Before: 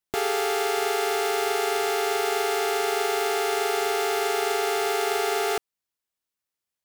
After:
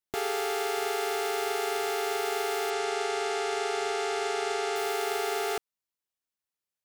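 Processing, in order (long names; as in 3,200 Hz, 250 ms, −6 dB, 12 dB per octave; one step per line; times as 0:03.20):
0:02.70–0:04.76: low-pass filter 8,800 Hz 24 dB per octave
level −5 dB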